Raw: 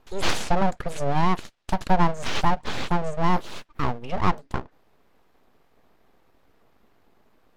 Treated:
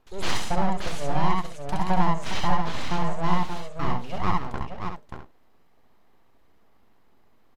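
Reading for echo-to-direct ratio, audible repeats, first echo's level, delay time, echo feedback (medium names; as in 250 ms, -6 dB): 0.0 dB, 4, -1.5 dB, 68 ms, no regular repeats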